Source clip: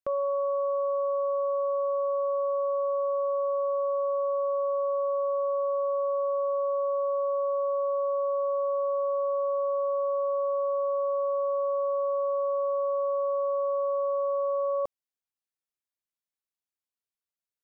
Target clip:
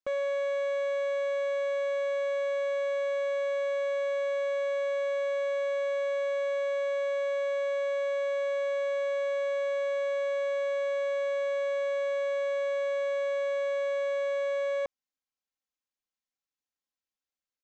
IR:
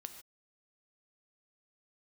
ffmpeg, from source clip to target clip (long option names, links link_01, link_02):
-af "aecho=1:1:3.8:0.79,aresample=16000,volume=25.5dB,asoftclip=hard,volume=-25.5dB,aresample=44100,volume=-2.5dB"